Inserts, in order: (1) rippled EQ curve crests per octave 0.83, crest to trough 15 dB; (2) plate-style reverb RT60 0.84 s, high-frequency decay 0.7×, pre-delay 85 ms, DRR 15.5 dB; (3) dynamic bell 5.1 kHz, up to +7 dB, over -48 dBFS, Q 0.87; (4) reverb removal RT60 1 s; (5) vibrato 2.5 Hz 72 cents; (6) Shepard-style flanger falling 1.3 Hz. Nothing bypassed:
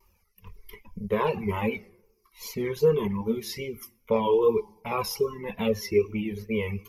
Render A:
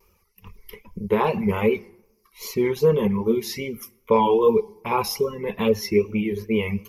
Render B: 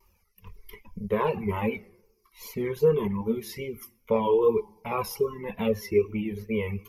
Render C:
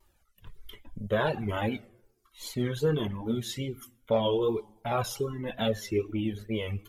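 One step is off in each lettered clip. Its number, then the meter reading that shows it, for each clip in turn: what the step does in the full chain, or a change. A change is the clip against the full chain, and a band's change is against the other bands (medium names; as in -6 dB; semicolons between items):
6, 1 kHz band +2.5 dB; 3, 4 kHz band -5.0 dB; 1, 500 Hz band -3.5 dB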